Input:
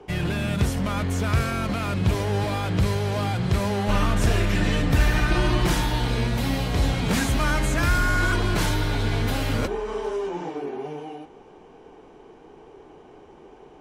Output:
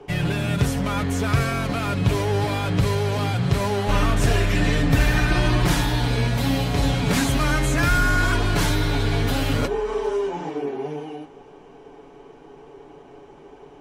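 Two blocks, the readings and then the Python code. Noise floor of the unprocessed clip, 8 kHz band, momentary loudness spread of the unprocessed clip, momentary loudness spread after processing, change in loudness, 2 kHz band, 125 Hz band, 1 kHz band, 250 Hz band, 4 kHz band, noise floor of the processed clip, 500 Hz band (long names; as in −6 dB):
−49 dBFS, +2.5 dB, 7 LU, 5 LU, +2.0 dB, +2.5 dB, +2.5 dB, +2.0 dB, +2.0 dB, +2.5 dB, −46 dBFS, +3.0 dB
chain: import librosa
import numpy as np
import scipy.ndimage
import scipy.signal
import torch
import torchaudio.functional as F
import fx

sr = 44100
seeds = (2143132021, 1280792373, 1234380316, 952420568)

y = x + 0.5 * np.pad(x, (int(7.1 * sr / 1000.0), 0))[:len(x)]
y = y * 10.0 ** (1.5 / 20.0)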